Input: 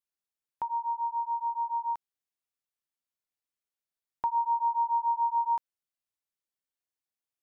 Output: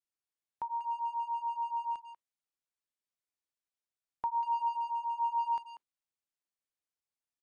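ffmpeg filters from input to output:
-filter_complex "[0:a]asettb=1/sr,asplit=3[a][b][c];[a]atrim=end=4.684[d];[b]atrim=start=4.68:end=5.2,asetpts=PTS-STARTPTS,afade=t=in:d=0.004:c=qsin,afade=t=out:st=0.516:d=0.004:c=qsin,acompressor=threshold=-28dB:ratio=6[e];[c]atrim=start=5.196[f];[d][e]acrossfade=d=0.004:c1=hsin:c2=qsin[g];[g][f]acrossfade=d=0.004:c1=qsin:c2=hsin,asplit=2[h][i];[i]adelay=190,highpass=300,lowpass=3.4k,asoftclip=type=hard:threshold=-31dB,volume=-11dB[j];[h][j]amix=inputs=2:normalize=0,volume=-4.5dB" -ar 22050 -c:a aac -b:a 96k

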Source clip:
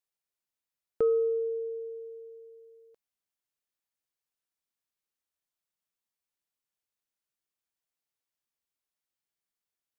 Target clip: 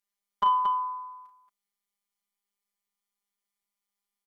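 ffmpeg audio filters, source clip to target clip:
-af "afftfilt=real='hypot(re,im)*cos(PI*b)':imag='0':win_size=2048:overlap=0.75,aecho=1:1:79|120|532:0.422|0.178|0.473,asetrate=103194,aresample=44100,volume=8dB"

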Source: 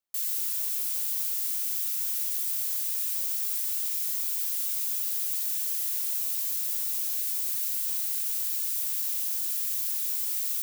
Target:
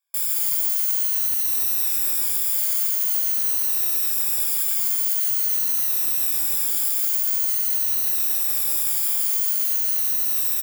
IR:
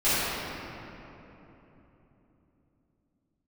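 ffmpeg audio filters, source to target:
-filter_complex "[0:a]afftfilt=real='re*pow(10,21/40*sin(2*PI*(1.8*log(max(b,1)*sr/1024/100)/log(2)-(-0.46)*(pts-256)/sr)))':imag='im*pow(10,21/40*sin(2*PI*(1.8*log(max(b,1)*sr/1024/100)/log(2)-(-0.46)*(pts-256)/sr)))':win_size=1024:overlap=0.75,highpass=1.2k,asplit=2[a][b];[b]asoftclip=type=tanh:threshold=-25dB,volume=-7.5dB[c];[a][c]amix=inputs=2:normalize=0,highshelf=f=6.6k:g=10.5,alimiter=limit=-5.5dB:level=0:latency=1:release=23,flanger=delay=17.5:depth=6:speed=2.7,acontrast=77,highshelf=f=2.8k:g=-11,asplit=9[d][e][f][g][h][i][j][k][l];[e]adelay=161,afreqshift=49,volume=-7dB[m];[f]adelay=322,afreqshift=98,volume=-11.2dB[n];[g]adelay=483,afreqshift=147,volume=-15.3dB[o];[h]adelay=644,afreqshift=196,volume=-19.5dB[p];[i]adelay=805,afreqshift=245,volume=-23.6dB[q];[j]adelay=966,afreqshift=294,volume=-27.8dB[r];[k]adelay=1127,afreqshift=343,volume=-31.9dB[s];[l]adelay=1288,afreqshift=392,volume=-36.1dB[t];[d][m][n][o][p][q][r][s][t]amix=inputs=9:normalize=0"

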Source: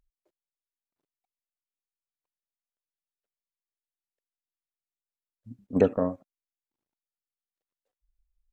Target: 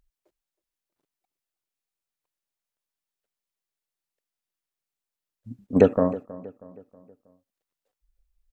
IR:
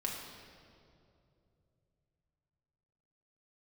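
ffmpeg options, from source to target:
-filter_complex "[0:a]asplit=2[a][b];[b]adelay=319,lowpass=f=2.3k:p=1,volume=-18dB,asplit=2[c][d];[d]adelay=319,lowpass=f=2.3k:p=1,volume=0.46,asplit=2[e][f];[f]adelay=319,lowpass=f=2.3k:p=1,volume=0.46,asplit=2[g][h];[h]adelay=319,lowpass=f=2.3k:p=1,volume=0.46[i];[a][c][e][g][i]amix=inputs=5:normalize=0,volume=5dB"

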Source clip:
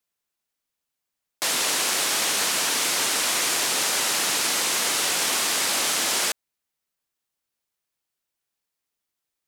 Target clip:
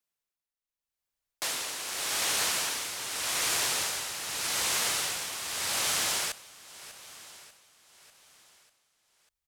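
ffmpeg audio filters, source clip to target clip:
-af "asubboost=boost=11:cutoff=79,aecho=1:1:594|1188|1782|2376|2970:0.158|0.0872|0.0479|0.0264|0.0145,tremolo=f=0.84:d=0.64,volume=-4.5dB"

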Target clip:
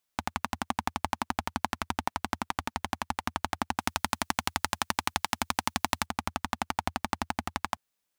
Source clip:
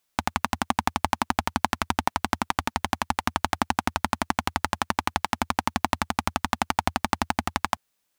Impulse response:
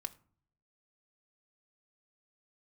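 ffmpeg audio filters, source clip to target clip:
-filter_complex "[0:a]asettb=1/sr,asplit=3[a][b][c];[a]atrim=end=3.794[d];[b]atrim=start=3.79:end=6.06,asetpts=PTS-STARTPTS,afade=t=in:d=0.004:c=qsin,afade=t=out:st=2.266:d=0.004:c=qsin,highshelf=f=2.3k:g=9.5[e];[c]atrim=start=6.056[f];[d][e]acrossfade=d=0.004:c1=hsin:c2=qsin[g];[g][f]acrossfade=d=0.004:c1=qsin:c2=hsin,volume=-6.5dB"

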